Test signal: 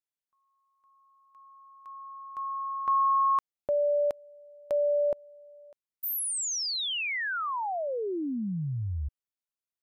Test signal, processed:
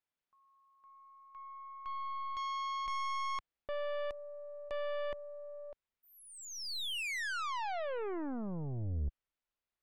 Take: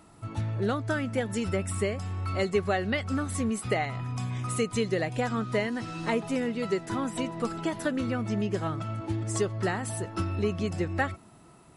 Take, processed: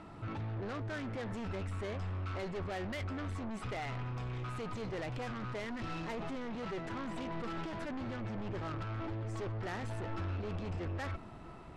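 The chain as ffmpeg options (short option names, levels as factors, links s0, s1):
-af "areverse,acompressor=threshold=0.0178:ratio=10:attack=0.35:release=26:knee=6:detection=rms,areverse,asoftclip=type=hard:threshold=0.0237,lowpass=3100,aeval=exprs='0.0251*(cos(1*acos(clip(val(0)/0.0251,-1,1)))-cos(1*PI/2))+0.01*(cos(2*acos(clip(val(0)/0.0251,-1,1)))-cos(2*PI/2))+0.00282*(cos(4*acos(clip(val(0)/0.0251,-1,1)))-cos(4*PI/2))+0.00398*(cos(5*acos(clip(val(0)/0.0251,-1,1)))-cos(5*PI/2))+0.00141*(cos(8*acos(clip(val(0)/0.0251,-1,1)))-cos(8*PI/2))':c=same,asubboost=boost=3:cutoff=71"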